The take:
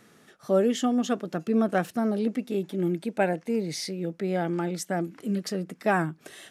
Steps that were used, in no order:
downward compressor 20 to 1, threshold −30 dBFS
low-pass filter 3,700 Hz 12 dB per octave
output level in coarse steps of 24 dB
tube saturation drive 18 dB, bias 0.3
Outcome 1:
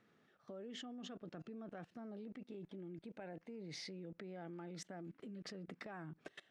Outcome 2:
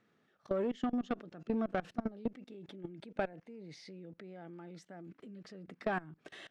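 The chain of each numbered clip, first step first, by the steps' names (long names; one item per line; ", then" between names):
low-pass filter, then downward compressor, then output level in coarse steps, then tube saturation
output level in coarse steps, then low-pass filter, then tube saturation, then downward compressor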